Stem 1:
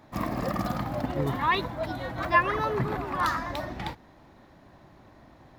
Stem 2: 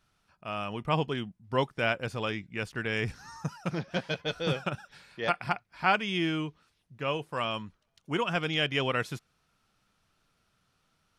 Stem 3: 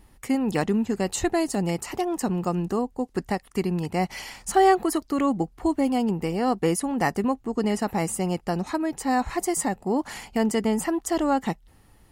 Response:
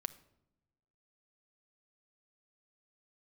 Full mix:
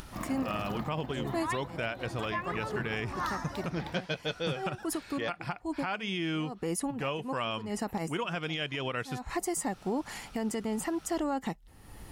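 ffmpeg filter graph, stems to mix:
-filter_complex "[0:a]volume=0.422[s0];[1:a]acompressor=mode=upward:threshold=0.0141:ratio=2.5,volume=1,asplit=2[s1][s2];[2:a]acompressor=mode=upward:threshold=0.0251:ratio=2.5,volume=0.794[s3];[s2]apad=whole_len=534097[s4];[s3][s4]sidechaincompress=threshold=0.00224:ratio=8:attack=21:release=133[s5];[s0][s1][s5]amix=inputs=3:normalize=0,alimiter=limit=0.075:level=0:latency=1:release=157"

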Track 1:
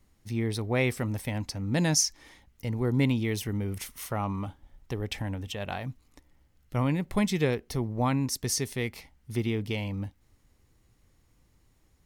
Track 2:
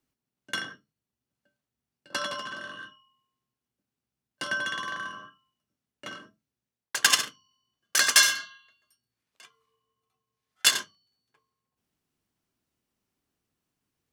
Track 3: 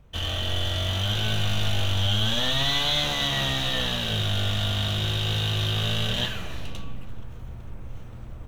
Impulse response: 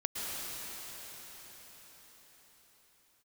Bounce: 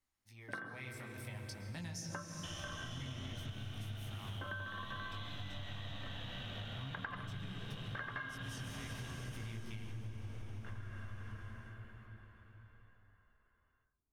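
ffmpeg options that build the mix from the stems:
-filter_complex "[0:a]asubboost=boost=5:cutoff=170,dynaudnorm=f=550:g=5:m=3.76,flanger=delay=17.5:depth=5.3:speed=0.51,volume=0.188,asplit=3[s0][s1][s2];[s1]volume=0.299[s3];[1:a]lowpass=f=1600:w=0.5412,lowpass=f=1600:w=1.3066,volume=1.12,asplit=2[s4][s5];[s5]volume=0.112[s6];[2:a]bass=f=250:g=3,treble=f=4000:g=-13,acompressor=threshold=0.0708:ratio=6,adelay=2300,volume=0.668,asplit=2[s7][s8];[s8]volume=0.2[s9];[s2]apad=whole_len=623126[s10];[s4][s10]sidechaingate=range=0.0224:threshold=0.00316:ratio=16:detection=peak[s11];[s0][s7]amix=inputs=2:normalize=0,highpass=f=510:w=0.5412,highpass=f=510:w=1.3066,acompressor=threshold=0.00562:ratio=6,volume=1[s12];[3:a]atrim=start_sample=2205[s13];[s3][s6][s9]amix=inputs=3:normalize=0[s14];[s14][s13]afir=irnorm=-1:irlink=0[s15];[s11][s12][s15]amix=inputs=3:normalize=0,acompressor=threshold=0.00891:ratio=8"

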